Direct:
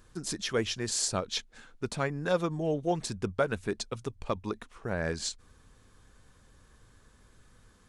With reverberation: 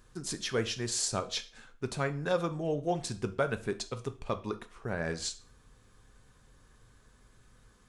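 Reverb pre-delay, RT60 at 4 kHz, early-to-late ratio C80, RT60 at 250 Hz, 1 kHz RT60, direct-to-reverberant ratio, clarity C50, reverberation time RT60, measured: 3 ms, 0.35 s, 20.5 dB, 0.40 s, 0.40 s, 8.0 dB, 16.0 dB, 0.40 s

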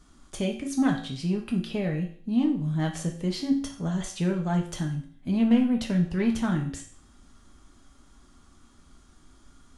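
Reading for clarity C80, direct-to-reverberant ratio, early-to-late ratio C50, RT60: 12.0 dB, 0.5 dB, 8.5 dB, 0.50 s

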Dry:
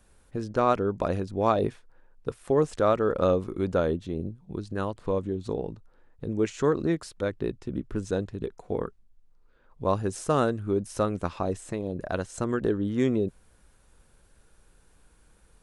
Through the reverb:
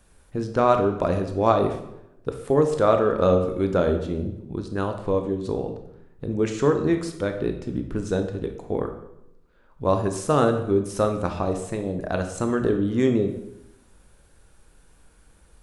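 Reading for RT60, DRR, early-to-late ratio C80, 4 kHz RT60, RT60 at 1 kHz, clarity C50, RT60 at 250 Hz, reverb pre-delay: 0.80 s, 5.5 dB, 11.0 dB, 0.65 s, 0.80 s, 8.0 dB, 1.0 s, 16 ms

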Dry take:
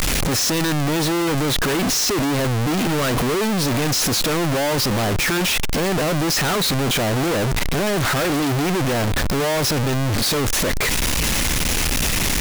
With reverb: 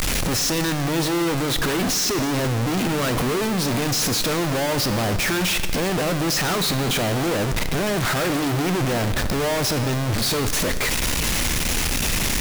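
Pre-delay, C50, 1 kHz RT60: 5 ms, 11.0 dB, 1.8 s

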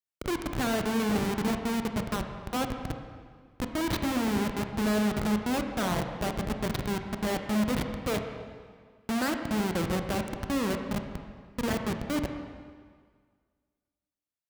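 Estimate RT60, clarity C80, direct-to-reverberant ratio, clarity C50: 1.7 s, 7.0 dB, 5.0 dB, 6.0 dB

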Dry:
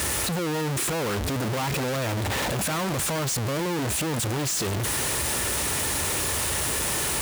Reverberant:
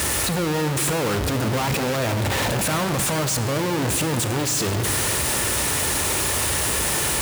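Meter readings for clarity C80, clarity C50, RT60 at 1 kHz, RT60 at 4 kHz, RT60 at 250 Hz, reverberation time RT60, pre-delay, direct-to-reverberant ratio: 9.5 dB, 8.5 dB, 2.5 s, 1.5 s, 2.7 s, 2.6 s, 32 ms, 8.0 dB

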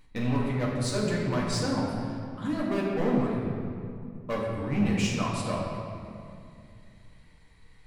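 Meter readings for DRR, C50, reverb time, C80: -5.0 dB, 0.0 dB, 2.4 s, 2.0 dB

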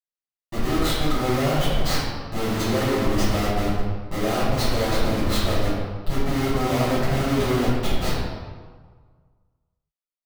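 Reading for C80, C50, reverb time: 1.5 dB, -1.5 dB, 1.5 s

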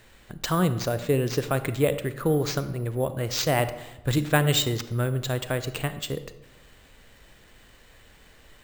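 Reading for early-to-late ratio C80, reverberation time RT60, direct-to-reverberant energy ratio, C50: 15.0 dB, 1.0 s, 11.5 dB, 13.0 dB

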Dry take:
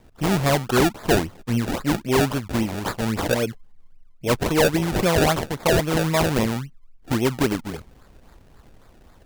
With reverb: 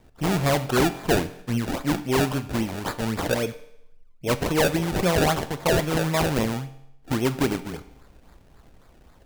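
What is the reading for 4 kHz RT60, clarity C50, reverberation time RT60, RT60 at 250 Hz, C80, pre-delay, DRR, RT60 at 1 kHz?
0.75 s, 15.0 dB, 0.75 s, 0.75 s, 17.5 dB, 7 ms, 11.0 dB, 0.75 s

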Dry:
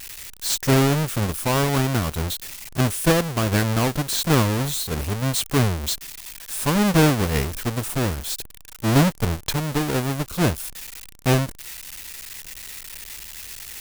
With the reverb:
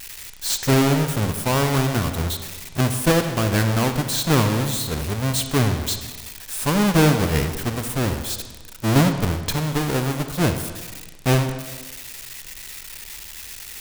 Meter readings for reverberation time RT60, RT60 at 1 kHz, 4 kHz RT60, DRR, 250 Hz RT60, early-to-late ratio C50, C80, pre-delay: 1.3 s, 1.3 s, 1.1 s, 7.0 dB, 1.3 s, 8.0 dB, 9.5 dB, 39 ms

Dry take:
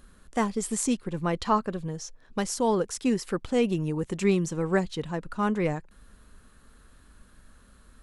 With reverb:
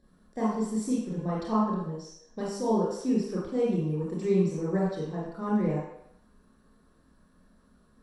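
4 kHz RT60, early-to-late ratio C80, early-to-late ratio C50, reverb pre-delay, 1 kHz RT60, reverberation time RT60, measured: 0.70 s, 3.5 dB, 0.0 dB, 25 ms, 0.80 s, 0.75 s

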